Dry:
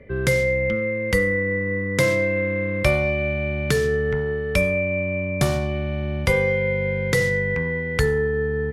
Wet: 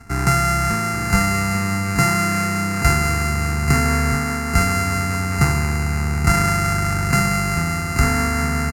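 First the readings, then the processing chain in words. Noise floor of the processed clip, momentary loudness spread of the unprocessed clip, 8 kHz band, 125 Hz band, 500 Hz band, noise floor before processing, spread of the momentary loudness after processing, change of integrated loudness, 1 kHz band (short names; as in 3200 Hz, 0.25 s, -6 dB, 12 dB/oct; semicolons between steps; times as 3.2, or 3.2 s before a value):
-23 dBFS, 4 LU, +12.0 dB, +5.5 dB, -8.0 dB, -26 dBFS, 4 LU, +3.0 dB, +15.5 dB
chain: sample sorter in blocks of 64 samples; Bessel low-pass 9200 Hz, order 2; fixed phaser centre 1400 Hz, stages 4; on a send: echo 0.832 s -9 dB; on the sum: gain +6.5 dB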